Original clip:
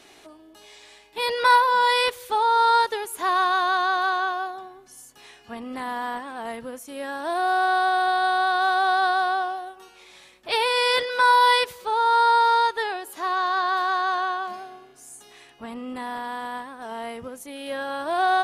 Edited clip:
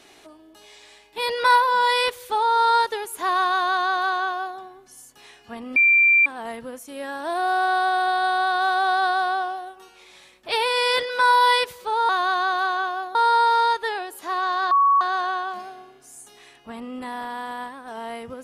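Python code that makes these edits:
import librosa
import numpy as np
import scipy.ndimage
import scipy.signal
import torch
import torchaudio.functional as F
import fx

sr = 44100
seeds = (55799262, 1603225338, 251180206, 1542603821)

y = fx.edit(x, sr, fx.duplicate(start_s=3.52, length_s=1.06, to_s=12.09),
    fx.bleep(start_s=5.76, length_s=0.5, hz=2360.0, db=-12.5),
    fx.bleep(start_s=13.65, length_s=0.3, hz=1120.0, db=-13.5), tone=tone)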